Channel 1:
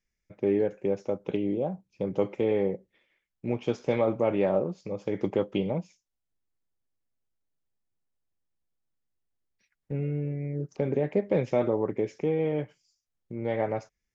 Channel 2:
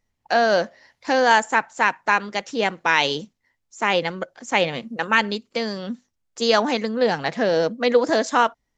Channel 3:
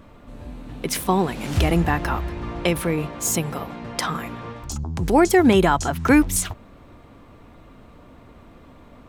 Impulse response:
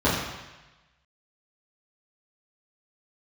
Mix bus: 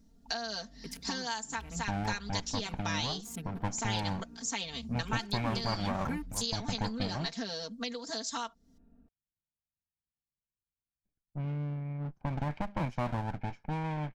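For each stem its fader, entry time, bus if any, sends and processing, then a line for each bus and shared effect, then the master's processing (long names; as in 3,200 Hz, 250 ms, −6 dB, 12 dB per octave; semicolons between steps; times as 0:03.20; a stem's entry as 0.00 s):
−4.5 dB, 1.45 s, no bus, no send, lower of the sound and its delayed copy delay 1.3 ms; low-pass that shuts in the quiet parts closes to 440 Hz, open at −22.5 dBFS
−7.5 dB, 0.00 s, bus A, no send, high shelf with overshoot 3,100 Hz +10 dB, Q 1.5
−16.5 dB, 0.00 s, bus A, no send, adaptive Wiener filter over 41 samples
bus A: 0.0 dB, comb filter 4.4 ms, depth 93%; downward compressor 6 to 1, threshold −32 dBFS, peak gain reduction 18 dB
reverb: not used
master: parametric band 530 Hz −9.5 dB 0.77 octaves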